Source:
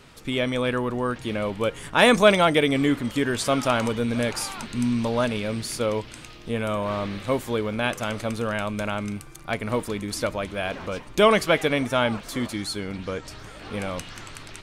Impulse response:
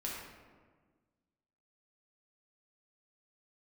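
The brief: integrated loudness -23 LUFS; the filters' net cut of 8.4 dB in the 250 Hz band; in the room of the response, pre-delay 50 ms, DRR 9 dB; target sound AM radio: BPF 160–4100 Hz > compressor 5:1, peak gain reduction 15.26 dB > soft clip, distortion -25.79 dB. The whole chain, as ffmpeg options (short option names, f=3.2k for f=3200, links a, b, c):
-filter_complex "[0:a]equalizer=f=250:t=o:g=-9,asplit=2[a][b];[1:a]atrim=start_sample=2205,adelay=50[c];[b][c]afir=irnorm=-1:irlink=0,volume=-10.5dB[d];[a][d]amix=inputs=2:normalize=0,highpass=160,lowpass=4.1k,acompressor=threshold=-28dB:ratio=5,asoftclip=threshold=-17dB,volume=10.5dB"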